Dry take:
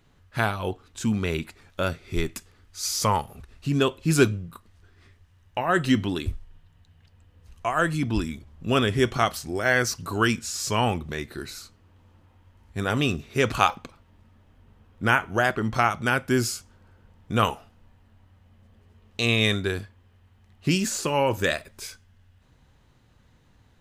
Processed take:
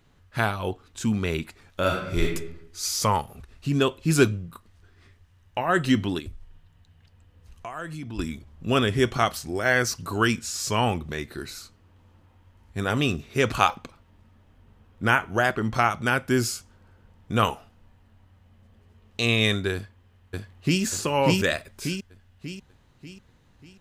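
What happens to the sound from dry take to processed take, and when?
0:01.80–0:02.24: thrown reverb, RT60 0.8 s, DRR −1 dB
0:06.19–0:08.19: downward compressor 2.5 to 1, threshold −37 dBFS
0:19.74–0:20.82: delay throw 590 ms, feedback 45%, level 0 dB

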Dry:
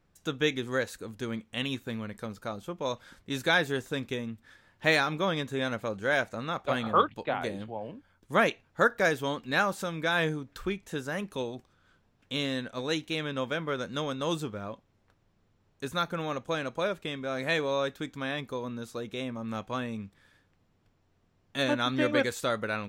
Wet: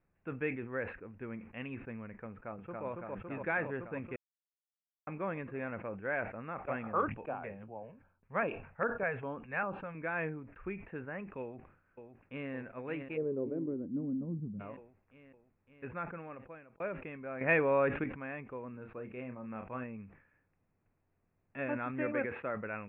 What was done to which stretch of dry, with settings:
0:02.30–0:02.86: delay throw 280 ms, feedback 80%, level −1 dB
0:04.16–0:05.07: silence
0:07.23–0:09.95: auto-filter notch square 2.5 Hz 310–2,000 Hz
0:11.41–0:12.52: delay throw 560 ms, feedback 75%, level −8 dB
0:13.16–0:14.59: low-pass with resonance 460 Hz → 180 Hz, resonance Q 5.8
0:15.87–0:16.80: fade out
0:17.41–0:18.04: clip gain +9 dB
0:18.71–0:19.84: double-tracking delay 32 ms −9 dB
0:22.06–0:22.55: band-pass filter 120–3,300 Hz
whole clip: Chebyshev low-pass filter 2,600 Hz, order 6; level that may fall only so fast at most 100 dB per second; level −8 dB

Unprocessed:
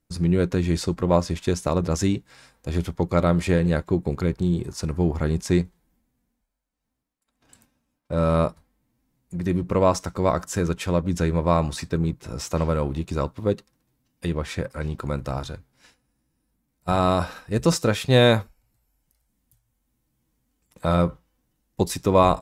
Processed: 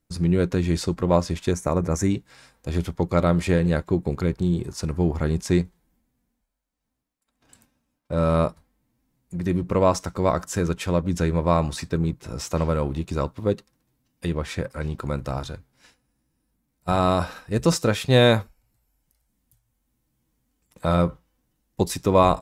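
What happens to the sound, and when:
0:01.51–0:02.11: gain on a spectral selection 2,500–5,500 Hz −11 dB

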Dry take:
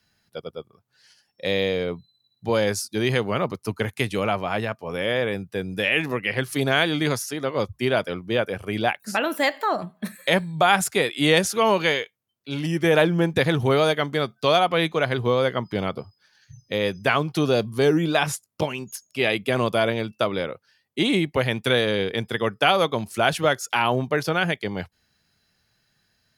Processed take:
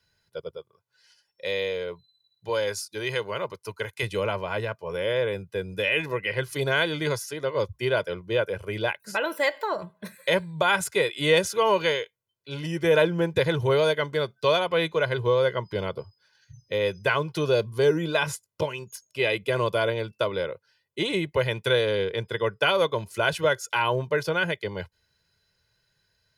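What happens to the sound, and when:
0:00.57–0:04.03: low-shelf EQ 440 Hz −9.5 dB
0:22.05–0:22.60: high-shelf EQ 5,500 Hz −5 dB
whole clip: high-shelf EQ 6,900 Hz −4 dB; comb filter 2 ms, depth 72%; level −4.5 dB

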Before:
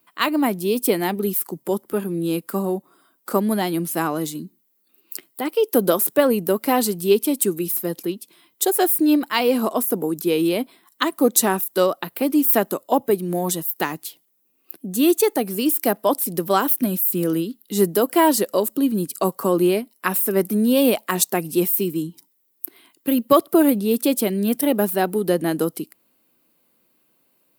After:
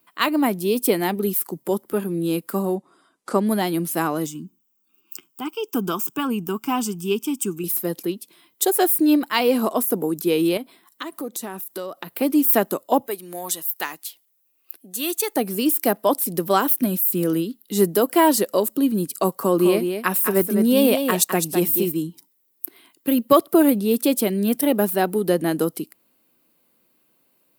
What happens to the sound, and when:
0:02.75–0:03.46: low-pass filter 9,100 Hz 24 dB per octave
0:04.26–0:07.64: phaser with its sweep stopped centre 2,800 Hz, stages 8
0:10.57–0:12.13: downward compressor 4 to 1, threshold −29 dBFS
0:13.07–0:15.36: high-pass filter 1,300 Hz 6 dB per octave
0:19.33–0:21.92: single-tap delay 207 ms −7 dB

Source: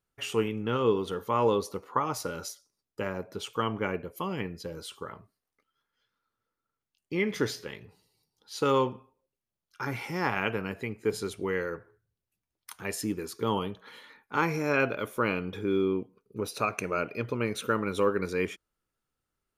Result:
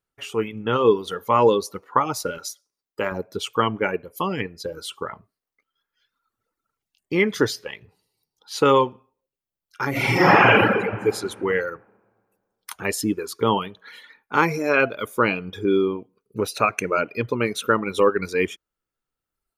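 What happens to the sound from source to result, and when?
0:02.38–0:03.12: low-shelf EQ 210 Hz −9.5 dB
0:09.90–0:10.61: thrown reverb, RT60 2 s, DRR −11.5 dB
whole clip: reverb reduction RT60 1.4 s; bass and treble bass −3 dB, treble −2 dB; automatic gain control gain up to 10 dB

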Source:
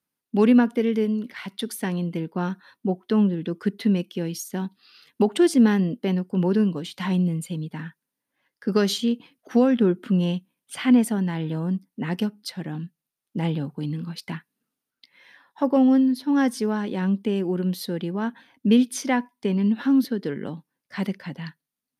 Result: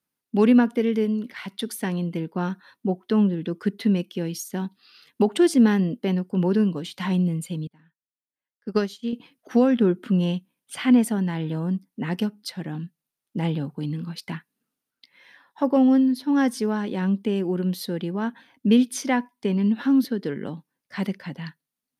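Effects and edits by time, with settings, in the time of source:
0:07.67–0:09.13: expander for the loud parts 2.5 to 1, over −32 dBFS

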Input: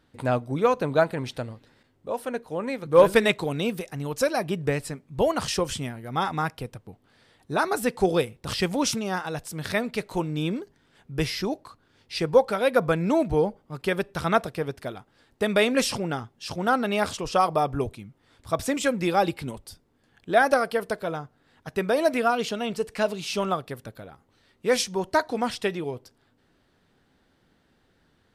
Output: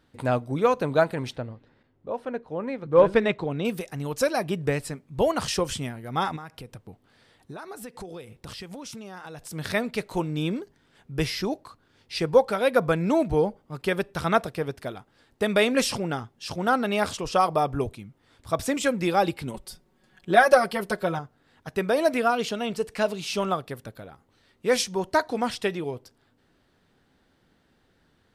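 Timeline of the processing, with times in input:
0:01.36–0:03.65: head-to-tape spacing loss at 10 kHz 23 dB
0:06.36–0:09.51: downward compressor 8 to 1, threshold −36 dBFS
0:19.54–0:21.19: comb filter 5.4 ms, depth 96%

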